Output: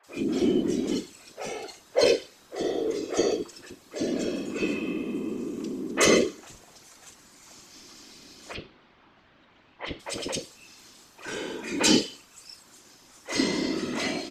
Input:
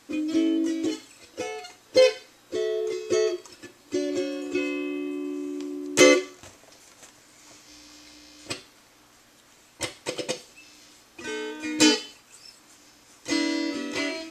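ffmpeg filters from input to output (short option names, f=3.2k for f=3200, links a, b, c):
-filter_complex "[0:a]asettb=1/sr,asplit=3[a][b][c];[a]atrim=end=8.504[d];[b]atrim=start=8.5:end=9.96,asetpts=PTS-STARTPTS,afade=t=in:d=0.004:c=qsin,afade=t=out:st=1.456:d=0.004:c=qsin,lowpass=f=3.3k:w=0.5412,lowpass=f=3.3k:w=1.3066[e];[c]atrim=start=9.956[f];[d][e]acrossfade=d=0.004:c1=hsin:c2=qsin[g];[g][f]acrossfade=d=0.004:c1=qsin:c2=hsin,afftfilt=real='hypot(re,im)*cos(2*PI*random(0))':imag='hypot(re,im)*sin(2*PI*random(1))':win_size=512:overlap=0.75,acrossover=split=490|2200[h][i][j];[j]adelay=40[k];[h]adelay=70[l];[l][i][k]amix=inputs=3:normalize=0,alimiter=level_in=15dB:limit=-1dB:release=50:level=0:latency=1,volume=-8dB"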